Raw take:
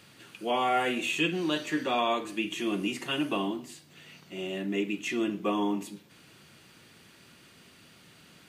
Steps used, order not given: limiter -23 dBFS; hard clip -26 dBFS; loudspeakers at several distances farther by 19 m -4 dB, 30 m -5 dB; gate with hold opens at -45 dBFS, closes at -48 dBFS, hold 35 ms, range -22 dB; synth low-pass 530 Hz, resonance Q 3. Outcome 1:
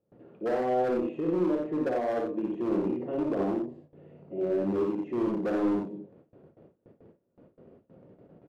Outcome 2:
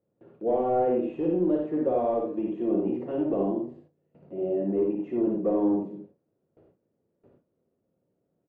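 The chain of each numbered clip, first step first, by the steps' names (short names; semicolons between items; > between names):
limiter > synth low-pass > hard clip > loudspeakers at several distances > gate with hold; hard clip > limiter > synth low-pass > gate with hold > loudspeakers at several distances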